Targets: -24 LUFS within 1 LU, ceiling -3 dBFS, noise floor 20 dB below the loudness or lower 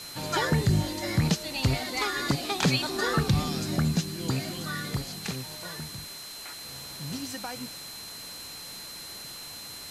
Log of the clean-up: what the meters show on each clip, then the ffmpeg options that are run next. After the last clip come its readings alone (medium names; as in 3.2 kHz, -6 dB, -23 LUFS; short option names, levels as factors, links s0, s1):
steady tone 4.1 kHz; tone level -42 dBFS; noise floor -42 dBFS; noise floor target -50 dBFS; loudness -30.0 LUFS; peak level -13.0 dBFS; loudness target -24.0 LUFS
-> -af "bandreject=f=4100:w=30"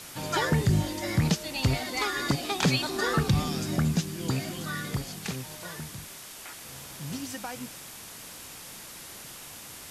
steady tone not found; noise floor -44 dBFS; noise floor target -49 dBFS
-> -af "afftdn=nr=6:nf=-44"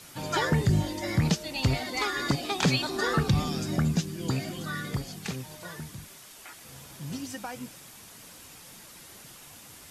noise floor -49 dBFS; loudness -29.0 LUFS; peak level -13.5 dBFS; loudness target -24.0 LUFS
-> -af "volume=1.78"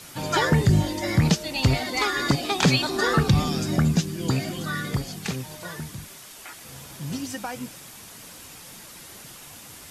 loudness -24.0 LUFS; peak level -8.5 dBFS; noise floor -44 dBFS